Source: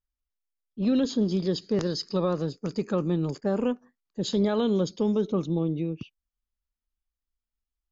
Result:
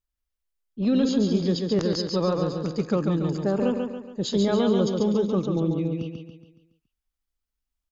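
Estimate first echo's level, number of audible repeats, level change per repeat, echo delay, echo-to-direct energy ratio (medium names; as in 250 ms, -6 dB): -4.5 dB, 5, -7.0 dB, 140 ms, -3.5 dB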